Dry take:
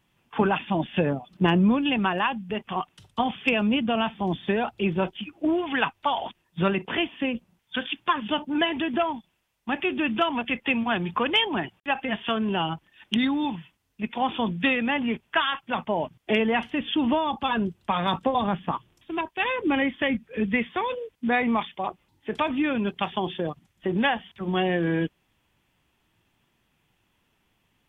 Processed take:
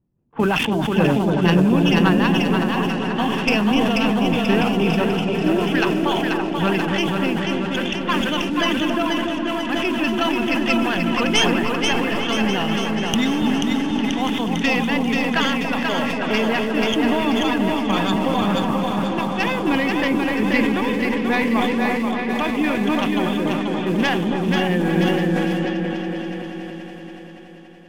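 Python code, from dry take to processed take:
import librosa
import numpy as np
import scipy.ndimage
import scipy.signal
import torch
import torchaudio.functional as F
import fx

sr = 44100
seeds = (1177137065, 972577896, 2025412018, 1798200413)

p1 = fx.tracing_dist(x, sr, depth_ms=0.091)
p2 = fx.echo_feedback(p1, sr, ms=485, feedback_pct=51, wet_db=-4.0)
p3 = fx.quant_dither(p2, sr, seeds[0], bits=6, dither='none')
p4 = p2 + F.gain(torch.from_numpy(p3), -8.0).numpy()
p5 = fx.env_lowpass(p4, sr, base_hz=440.0, full_db=-20.5)
p6 = fx.peak_eq(p5, sr, hz=840.0, db=-5.0, octaves=1.5)
p7 = p6 + fx.echo_opening(p6, sr, ms=284, hz=750, octaves=1, feedback_pct=70, wet_db=-3, dry=0)
y = fx.sustainer(p7, sr, db_per_s=22.0)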